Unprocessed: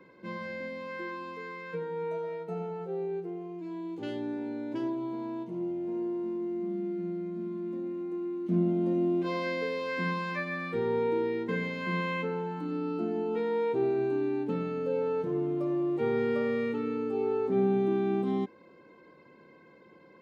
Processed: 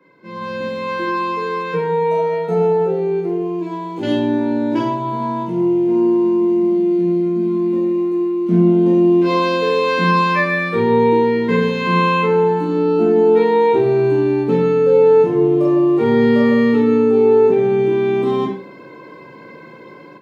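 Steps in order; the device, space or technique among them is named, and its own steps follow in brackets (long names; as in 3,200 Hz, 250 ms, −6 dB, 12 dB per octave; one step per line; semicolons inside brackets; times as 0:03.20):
far laptop microphone (convolution reverb RT60 0.35 s, pre-delay 13 ms, DRR −2.5 dB; high-pass filter 110 Hz; automatic gain control gain up to 15.5 dB)
level −1.5 dB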